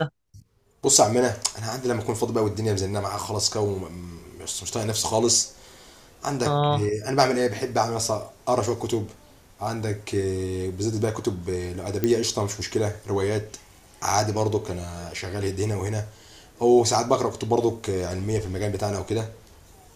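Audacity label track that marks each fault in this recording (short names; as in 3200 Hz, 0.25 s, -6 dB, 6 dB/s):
12.040000	12.040000	pop -9 dBFS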